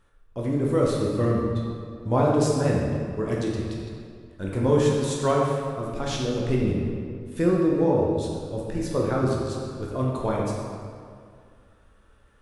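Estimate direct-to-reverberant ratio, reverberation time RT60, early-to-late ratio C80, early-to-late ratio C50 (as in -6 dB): -3.5 dB, 2.2 s, 1.5 dB, -0.5 dB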